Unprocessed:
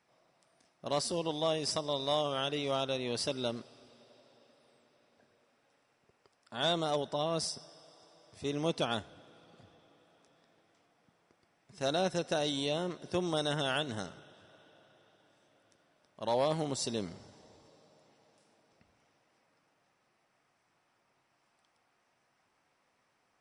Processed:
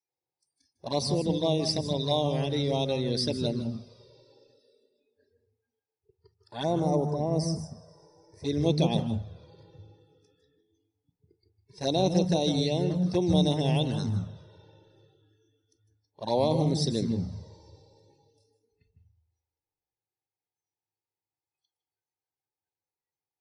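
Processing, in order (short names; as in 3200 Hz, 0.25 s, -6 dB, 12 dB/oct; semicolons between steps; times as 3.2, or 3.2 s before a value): bell 6800 Hz +2.5 dB 0.6 oct; envelope flanger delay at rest 2.4 ms, full sweep at -27.5 dBFS; spectral noise reduction 28 dB; 6.63–8.44 EQ curve 2000 Hz 0 dB, 3300 Hz -26 dB, 5600 Hz -3 dB; reverb RT60 0.30 s, pre-delay 0.15 s, DRR 9 dB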